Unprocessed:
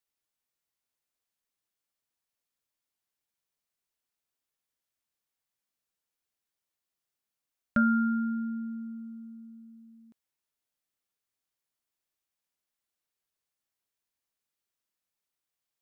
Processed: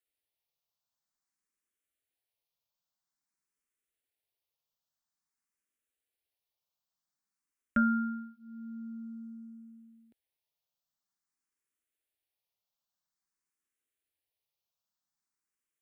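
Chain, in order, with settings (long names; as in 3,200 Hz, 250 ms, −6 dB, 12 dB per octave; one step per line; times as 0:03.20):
frequency shifter mixed with the dry sound +0.5 Hz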